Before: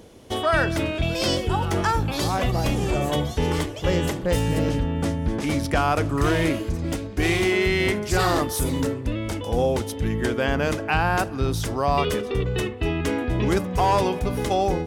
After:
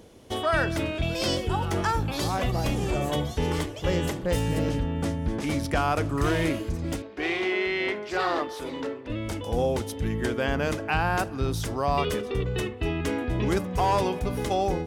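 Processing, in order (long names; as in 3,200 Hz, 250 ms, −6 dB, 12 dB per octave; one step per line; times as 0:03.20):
0:07.02–0:09.10: three-way crossover with the lows and the highs turned down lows −21 dB, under 280 Hz, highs −21 dB, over 4,500 Hz
level −3.5 dB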